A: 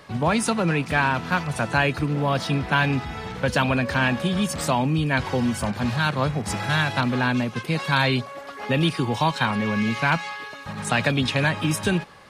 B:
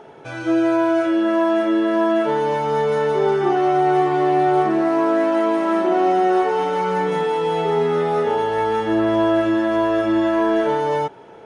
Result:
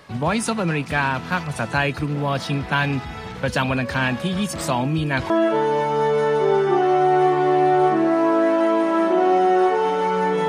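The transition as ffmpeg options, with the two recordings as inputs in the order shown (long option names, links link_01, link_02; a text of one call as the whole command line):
ffmpeg -i cue0.wav -i cue1.wav -filter_complex "[1:a]asplit=2[link_01][link_02];[0:a]apad=whole_dur=10.48,atrim=end=10.48,atrim=end=5.302[link_03];[link_02]atrim=start=2.038:end=7.22[link_04];[link_01]atrim=start=1.27:end=2.04,asetpts=PTS-STARTPTS,volume=-17dB,afade=type=in:duration=0.004:curve=hsin,afade=type=out:start_time=0.766:duration=0.004:curve=hsin,adelay=199773S[link_05];[link_03][link_04]acrossfade=duration=0.004:curve1=hsin:curve2=hsin[link_06];[link_06][link_05]amix=inputs=2:normalize=0" out.wav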